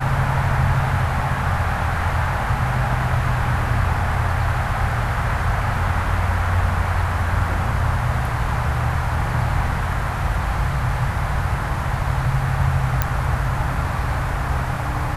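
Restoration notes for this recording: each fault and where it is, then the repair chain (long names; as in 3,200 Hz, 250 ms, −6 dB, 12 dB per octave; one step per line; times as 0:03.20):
0:13.02: click −4 dBFS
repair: click removal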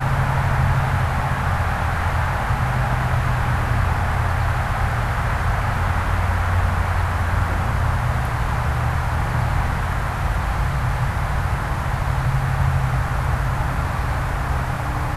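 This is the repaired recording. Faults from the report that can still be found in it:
none of them is left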